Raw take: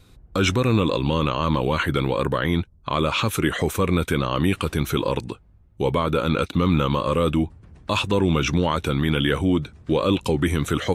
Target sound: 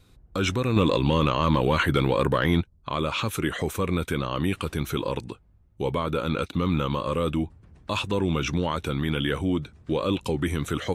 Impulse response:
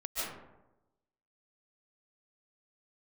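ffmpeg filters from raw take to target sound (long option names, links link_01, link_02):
-filter_complex "[0:a]asettb=1/sr,asplit=3[link_01][link_02][link_03];[link_01]atrim=end=0.764[link_04];[link_02]atrim=start=0.76:end=2.61,asetpts=PTS-STARTPTS,afade=type=in:duration=0.004:curve=qsin,afade=type=out:start_time=1.846:duration=0.004:curve=qsin,acontrast=36[link_05];[link_03]atrim=start=2.606[link_06];[link_04][link_05]acrossfade=duration=0.004:curve1=hsin:curve2=qsin[link_07];[link_07][link_06]acrossfade=duration=0.004:curve1=qsin:curve2=hsin,volume=-5dB"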